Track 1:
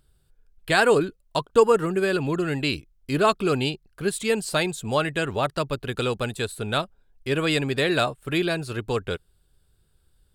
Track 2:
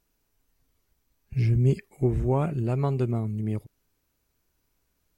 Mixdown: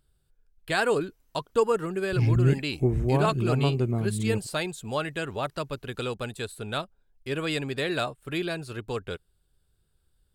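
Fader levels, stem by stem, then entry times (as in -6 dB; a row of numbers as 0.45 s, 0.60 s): -6.0 dB, 0.0 dB; 0.00 s, 0.80 s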